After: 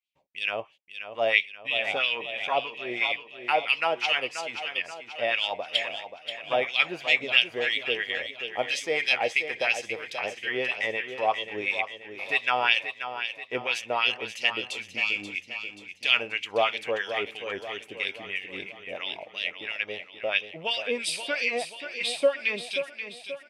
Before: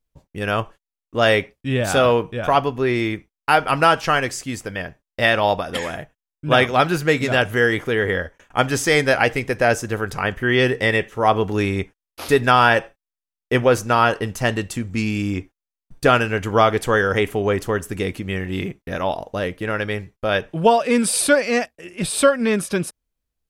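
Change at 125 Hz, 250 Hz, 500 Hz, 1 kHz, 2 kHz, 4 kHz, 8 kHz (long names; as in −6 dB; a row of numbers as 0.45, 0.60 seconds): −28.0, −20.0, −11.5, −11.5, −5.0, −0.5, −14.0 decibels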